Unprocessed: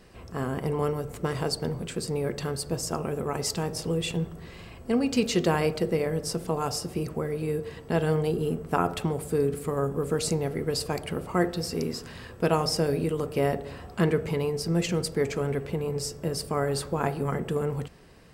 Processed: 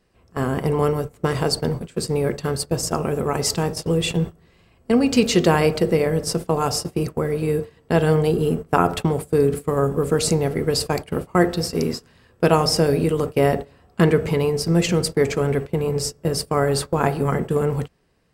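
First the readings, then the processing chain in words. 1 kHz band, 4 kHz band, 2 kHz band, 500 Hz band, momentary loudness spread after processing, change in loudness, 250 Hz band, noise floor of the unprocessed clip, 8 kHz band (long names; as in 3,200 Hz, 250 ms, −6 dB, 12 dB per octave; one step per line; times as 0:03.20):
+7.5 dB, +7.0 dB, +7.0 dB, +7.5 dB, 7 LU, +7.5 dB, +7.5 dB, −45 dBFS, +7.0 dB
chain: noise gate −32 dBFS, range −19 dB
level +7.5 dB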